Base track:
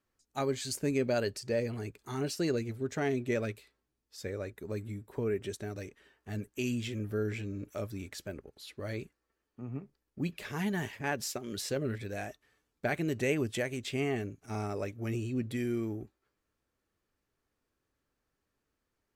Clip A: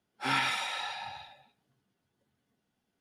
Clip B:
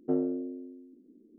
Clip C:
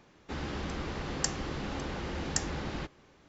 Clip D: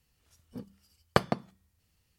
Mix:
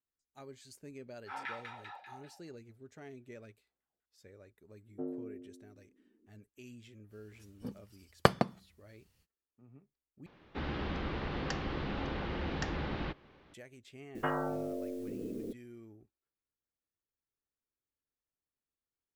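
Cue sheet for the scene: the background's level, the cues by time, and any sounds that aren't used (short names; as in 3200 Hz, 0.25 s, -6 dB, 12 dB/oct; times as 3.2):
base track -18.5 dB
1.06 add A -5 dB + LFO band-pass saw down 5.1 Hz 390–2000 Hz
4.9 add B -11.5 dB
7.09 add D, fades 0.05 s
10.26 replace with C -0.5 dB + LPF 4000 Hz 24 dB/oct
14.15 add B -2.5 dB + spectral compressor 10:1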